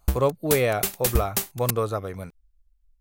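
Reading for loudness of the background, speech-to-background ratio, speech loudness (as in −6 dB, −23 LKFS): −27.5 LKFS, 1.0 dB, −26.5 LKFS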